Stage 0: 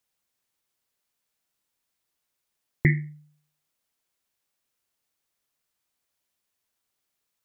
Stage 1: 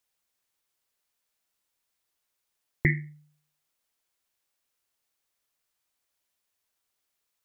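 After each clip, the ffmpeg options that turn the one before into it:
-af "equalizer=f=170:t=o:w=1.9:g=-5"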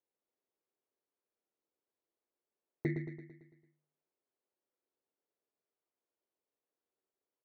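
-af "asoftclip=type=tanh:threshold=-17.5dB,bandpass=f=380:t=q:w=1.9:csg=0,aecho=1:1:112|224|336|448|560|672|784:0.422|0.228|0.123|0.0664|0.0359|0.0194|0.0105,volume=3dB"

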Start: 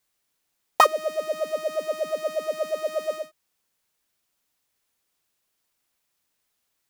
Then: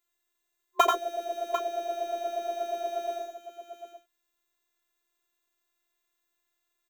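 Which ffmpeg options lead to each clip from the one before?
-af "afftfilt=real='hypot(re,im)*cos(PI*b)':imag='0':win_size=512:overlap=0.75,superequalizer=7b=2.51:10b=1.58:14b=0.501:16b=0.398,aecho=1:1:86|104|746:0.631|0.282|0.282,volume=-2dB"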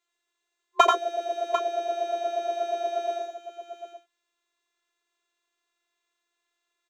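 -filter_complex "[0:a]acrossover=split=270 7500:gain=0.141 1 0.0891[a][b][c];[a][b][c]amix=inputs=3:normalize=0,volume=4dB"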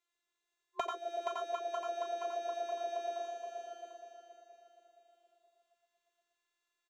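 -filter_complex "[0:a]asplit=2[a][b];[b]aecho=0:1:472|944|1416|1888|2360:0.376|0.165|0.0728|0.032|0.0141[c];[a][c]amix=inputs=2:normalize=0,acompressor=threshold=-27dB:ratio=8,volume=-6.5dB"

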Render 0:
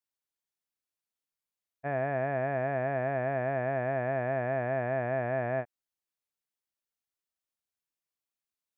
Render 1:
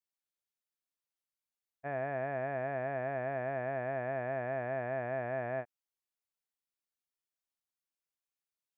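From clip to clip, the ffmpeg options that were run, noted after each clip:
-af "equalizer=f=110:t=o:w=2.9:g=-3.5,volume=-4.5dB"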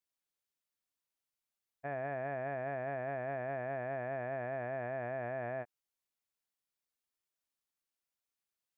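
-af "alimiter=level_in=6dB:limit=-24dB:level=0:latency=1:release=17,volume=-6dB,volume=1dB"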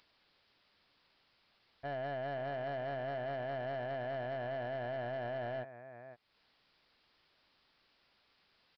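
-af "acompressor=mode=upward:threshold=-50dB:ratio=2.5,aecho=1:1:514:0.178,aresample=11025,asoftclip=type=tanh:threshold=-36dB,aresample=44100,volume=2.5dB"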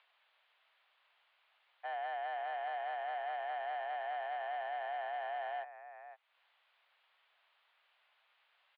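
-af "highpass=f=580:t=q:w=0.5412,highpass=f=580:t=q:w=1.307,lowpass=f=3.4k:t=q:w=0.5176,lowpass=f=3.4k:t=q:w=0.7071,lowpass=f=3.4k:t=q:w=1.932,afreqshift=61,volume=1.5dB"

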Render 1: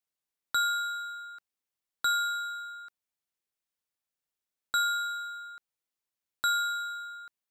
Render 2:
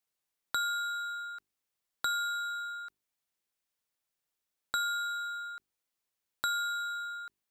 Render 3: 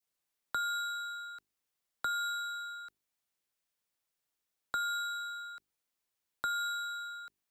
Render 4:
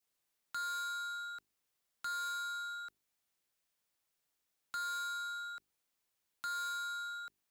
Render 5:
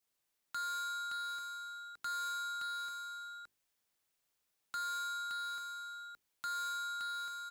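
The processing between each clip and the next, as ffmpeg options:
-af "bandreject=f=50:t=h:w=6,bandreject=f=100:t=h:w=6,bandreject=f=150:t=h:w=6,bandreject=f=200:t=h:w=6,bandreject=f=250:t=h:w=6,bandreject=f=300:t=h:w=6,bandreject=f=350:t=h:w=6,bandreject=f=400:t=h:w=6,acompressor=threshold=-38dB:ratio=2,volume=3dB"
-filter_complex "[0:a]adynamicequalizer=threshold=0.00447:dfrequency=1200:dqfactor=0.75:tfrequency=1200:tqfactor=0.75:attack=5:release=100:ratio=0.375:range=2.5:mode=cutabove:tftype=bell,acrossover=split=310|650|1800[a][b][c][d];[d]alimiter=level_in=6.5dB:limit=-24dB:level=0:latency=1:release=220,volume=-6.5dB[e];[a][b][c][e]amix=inputs=4:normalize=0"
-af "asoftclip=type=tanh:threshold=-38.5dB,volume=2dB"
-af "aecho=1:1:569:0.596"

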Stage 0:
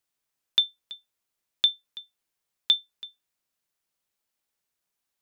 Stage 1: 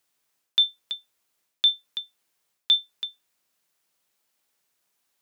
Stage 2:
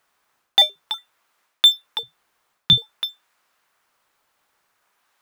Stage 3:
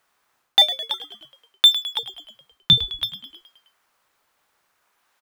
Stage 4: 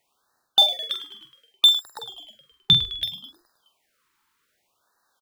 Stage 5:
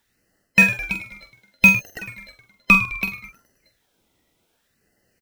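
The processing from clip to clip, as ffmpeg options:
-af "lowshelf=f=100:g=-10.5,areverse,acompressor=threshold=-26dB:ratio=6,areverse,volume=8.5dB"
-filter_complex "[0:a]equalizer=f=1.2k:t=o:w=2.4:g=14.5,asplit=2[a][b];[b]acrusher=samples=9:mix=1:aa=0.000001:lfo=1:lforange=14.4:lforate=0.52,volume=-10.5dB[c];[a][c]amix=inputs=2:normalize=0"
-filter_complex "[0:a]asplit=7[a][b][c][d][e][f][g];[b]adelay=105,afreqshift=-79,volume=-13.5dB[h];[c]adelay=210,afreqshift=-158,volume=-18.1dB[i];[d]adelay=315,afreqshift=-237,volume=-22.7dB[j];[e]adelay=420,afreqshift=-316,volume=-27.2dB[k];[f]adelay=525,afreqshift=-395,volume=-31.8dB[l];[g]adelay=630,afreqshift=-474,volume=-36.4dB[m];[a][h][i][j][k][l][m]amix=inputs=7:normalize=0"
-filter_complex "[0:a]asplit=2[a][b];[b]adelay=46,volume=-7.5dB[c];[a][c]amix=inputs=2:normalize=0,afftfilt=real='re*(1-between(b*sr/1024,570*pow(2700/570,0.5+0.5*sin(2*PI*0.65*pts/sr))/1.41,570*pow(2700/570,0.5+0.5*sin(2*PI*0.65*pts/sr))*1.41))':imag='im*(1-between(b*sr/1024,570*pow(2700/570,0.5+0.5*sin(2*PI*0.65*pts/sr))/1.41,570*pow(2700/570,0.5+0.5*sin(2*PI*0.65*pts/sr))*1.41))':win_size=1024:overlap=0.75,volume=-2dB"
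-filter_complex "[0:a]afftfilt=real='real(if(lt(b,960),b+48*(1-2*mod(floor(b/48),2)),b),0)':imag='imag(if(lt(b,960),b+48*(1-2*mod(floor(b/48),2)),b),0)':win_size=2048:overlap=0.75,asplit=2[a][b];[b]acrusher=samples=38:mix=1:aa=0.000001,volume=-7dB[c];[a][c]amix=inputs=2:normalize=0,volume=2dB"

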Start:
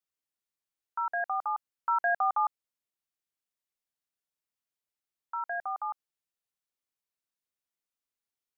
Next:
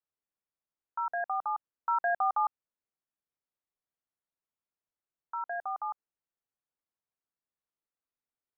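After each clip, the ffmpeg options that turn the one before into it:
-af "lowpass=1.5k"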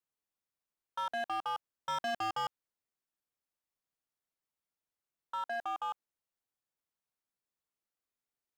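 -af "asoftclip=type=hard:threshold=-32dB"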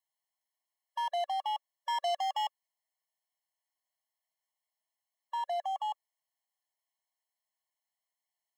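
-af "afftfilt=real='re*eq(mod(floor(b*sr/1024/560),2),1)':imag='im*eq(mod(floor(b*sr/1024/560),2),1)':win_size=1024:overlap=0.75,volume=5dB"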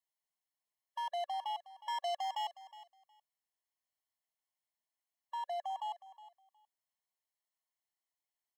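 -af "aecho=1:1:364|728:0.15|0.0269,volume=-5dB"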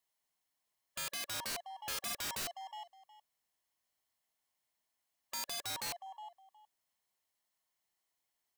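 -af "aeval=exprs='(mod(106*val(0)+1,2)-1)/106':c=same,volume=7dB"

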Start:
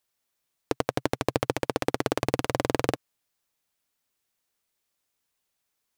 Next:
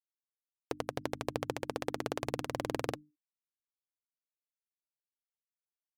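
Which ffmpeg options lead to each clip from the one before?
-af "bandreject=f=50:t=h:w=6,bandreject=f=100:t=h:w=6,bandreject=f=150:t=h:w=6,bandreject=f=200:t=h:w=6,bandreject=f=250:t=h:w=6,bandreject=f=300:t=h:w=6,afftfilt=real='re*gte(hypot(re,im),0.00282)':imag='im*gte(hypot(re,im),0.00282)':win_size=1024:overlap=0.75,volume=-9dB"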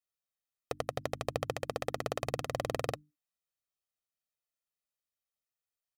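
-af "aecho=1:1:1.6:0.6"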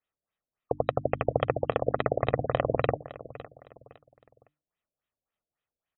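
-af "aecho=1:1:510|1020|1530:0.15|0.0509|0.0173,afftfilt=real='re*lt(b*sr/1024,670*pow(4000/670,0.5+0.5*sin(2*PI*3.6*pts/sr)))':imag='im*lt(b*sr/1024,670*pow(4000/670,0.5+0.5*sin(2*PI*3.6*pts/sr)))':win_size=1024:overlap=0.75,volume=9dB"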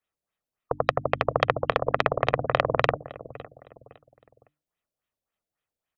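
-filter_complex "[0:a]aeval=exprs='0.447*(cos(1*acos(clip(val(0)/0.447,-1,1)))-cos(1*PI/2))+0.2*(cos(2*acos(clip(val(0)/0.447,-1,1)))-cos(2*PI/2))+0.0501*(cos(3*acos(clip(val(0)/0.447,-1,1)))-cos(3*PI/2))+0.01*(cos(5*acos(clip(val(0)/0.447,-1,1)))-cos(5*PI/2))':c=same,acrossover=split=380[a][b];[a]asoftclip=type=tanh:threshold=-30.5dB[c];[c][b]amix=inputs=2:normalize=0,volume=4dB"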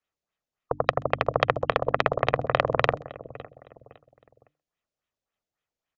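-filter_complex "[0:a]asplit=2[a][b];[b]adelay=130,highpass=300,lowpass=3.4k,asoftclip=type=hard:threshold=-10.5dB,volume=-26dB[c];[a][c]amix=inputs=2:normalize=0,aresample=16000,aresample=44100"

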